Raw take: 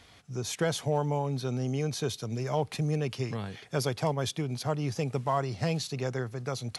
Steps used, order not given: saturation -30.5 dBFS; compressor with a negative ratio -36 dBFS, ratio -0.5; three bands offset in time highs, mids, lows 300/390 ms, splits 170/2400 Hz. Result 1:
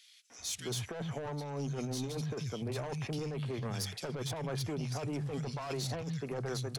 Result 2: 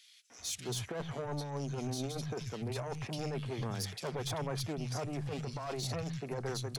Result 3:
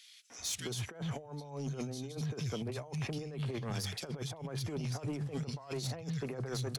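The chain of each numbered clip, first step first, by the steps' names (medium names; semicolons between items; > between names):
three bands offset in time > saturation > compressor with a negative ratio; saturation > three bands offset in time > compressor with a negative ratio; three bands offset in time > compressor with a negative ratio > saturation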